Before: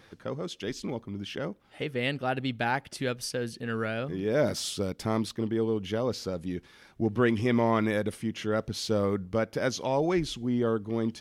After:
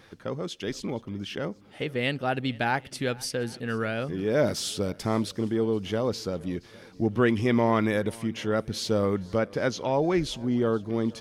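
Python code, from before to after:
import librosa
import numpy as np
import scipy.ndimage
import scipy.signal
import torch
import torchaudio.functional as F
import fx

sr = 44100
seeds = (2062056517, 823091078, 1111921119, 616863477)

y = fx.high_shelf(x, sr, hz=fx.line((9.37, 8800.0), (10.13, 6000.0)), db=-11.0, at=(9.37, 10.13), fade=0.02)
y = fx.echo_swing(y, sr, ms=786, ratio=1.5, feedback_pct=36, wet_db=-23.5)
y = y * librosa.db_to_amplitude(2.0)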